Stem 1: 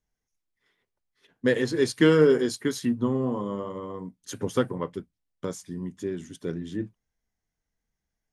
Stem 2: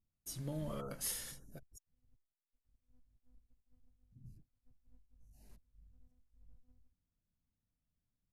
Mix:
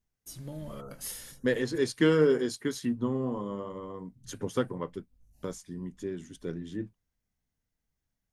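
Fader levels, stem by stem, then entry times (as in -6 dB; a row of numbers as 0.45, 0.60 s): -4.5, +0.5 dB; 0.00, 0.00 s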